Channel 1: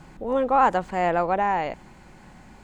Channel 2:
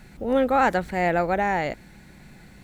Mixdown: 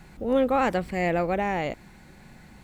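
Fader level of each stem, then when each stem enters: −7.0, −3.0 decibels; 0.00, 0.00 seconds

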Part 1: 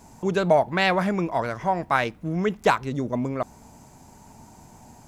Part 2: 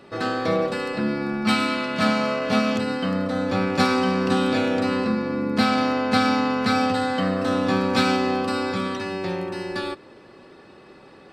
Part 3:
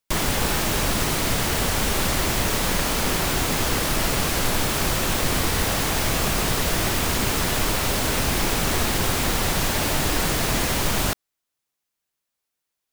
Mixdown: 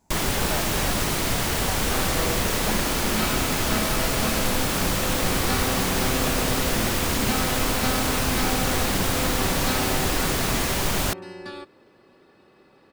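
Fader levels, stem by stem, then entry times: −15.5, −8.5, −1.5 decibels; 0.00, 1.70, 0.00 seconds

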